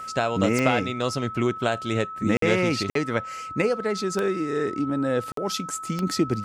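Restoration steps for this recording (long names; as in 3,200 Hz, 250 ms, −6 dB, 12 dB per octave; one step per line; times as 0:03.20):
click removal
notch filter 1,300 Hz, Q 30
repair the gap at 0:02.37/0:02.90/0:05.32, 53 ms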